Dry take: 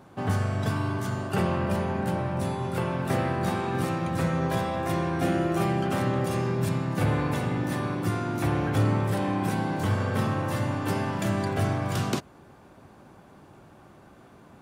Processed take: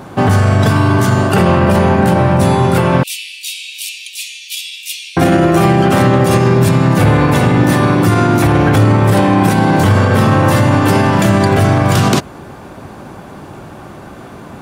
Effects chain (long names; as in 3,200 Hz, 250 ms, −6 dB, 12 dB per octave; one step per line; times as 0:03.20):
0:03.03–0:05.17: Butterworth high-pass 2,500 Hz 72 dB per octave
boost into a limiter +20.5 dB
level −1 dB